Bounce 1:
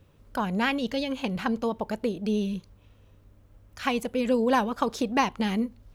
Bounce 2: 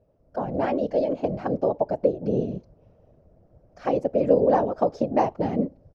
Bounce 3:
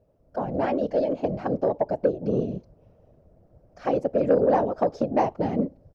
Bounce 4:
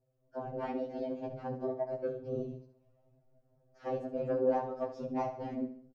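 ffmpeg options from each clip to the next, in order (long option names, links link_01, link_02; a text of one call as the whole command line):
ffmpeg -i in.wav -af "afftfilt=real='hypot(re,im)*cos(2*PI*random(0))':imag='hypot(re,im)*sin(2*PI*random(1))':win_size=512:overlap=0.75,dynaudnorm=framelen=280:gausssize=3:maxgain=8dB,firequalizer=gain_entry='entry(200,0);entry(630,13);entry(1000,-4);entry(3500,-18);entry(5200,-7);entry(7500,-20);entry(11000,-29)':delay=0.05:min_phase=1,volume=-3.5dB" out.wav
ffmpeg -i in.wav -af "asoftclip=type=tanh:threshold=-9dB" out.wav
ffmpeg -i in.wav -filter_complex "[0:a]flanger=delay=8.6:depth=4.5:regen=-62:speed=0.96:shape=sinusoidal,asplit=2[link_01][link_02];[link_02]aecho=0:1:70|140|210|280:0.282|0.116|0.0474|0.0194[link_03];[link_01][link_03]amix=inputs=2:normalize=0,afftfilt=real='re*2.45*eq(mod(b,6),0)':imag='im*2.45*eq(mod(b,6),0)':win_size=2048:overlap=0.75,volume=-5.5dB" out.wav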